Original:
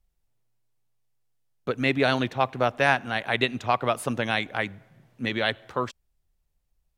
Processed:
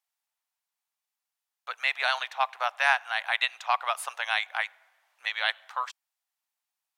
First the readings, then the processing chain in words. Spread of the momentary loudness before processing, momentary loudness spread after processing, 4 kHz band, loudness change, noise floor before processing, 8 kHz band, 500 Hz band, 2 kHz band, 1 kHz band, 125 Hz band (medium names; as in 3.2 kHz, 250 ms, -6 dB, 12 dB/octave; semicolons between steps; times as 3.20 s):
10 LU, 10 LU, 0.0 dB, -2.5 dB, -75 dBFS, 0.0 dB, -13.0 dB, 0.0 dB, -1.5 dB, under -40 dB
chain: steep high-pass 770 Hz 36 dB/octave